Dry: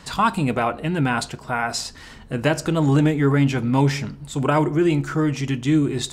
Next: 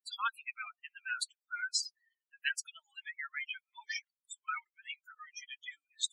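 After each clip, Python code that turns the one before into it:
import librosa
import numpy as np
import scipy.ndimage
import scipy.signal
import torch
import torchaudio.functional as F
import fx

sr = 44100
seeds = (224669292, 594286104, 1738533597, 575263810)

y = fx.bin_expand(x, sr, power=3.0)
y = scipy.signal.sosfilt(scipy.signal.butter(6, 1400.0, 'highpass', fs=sr, output='sos'), y)
y = fx.spec_gate(y, sr, threshold_db=-20, keep='strong')
y = F.gain(torch.from_numpy(y), -1.5).numpy()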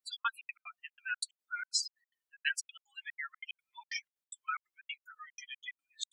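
y = fx.step_gate(x, sr, bpm=184, pattern='xx.xx.x.x', floor_db=-60.0, edge_ms=4.5)
y = F.gain(torch.from_numpy(y), 1.0).numpy()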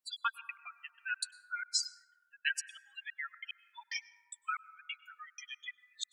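y = fx.rev_plate(x, sr, seeds[0], rt60_s=1.7, hf_ratio=0.25, predelay_ms=90, drr_db=17.5)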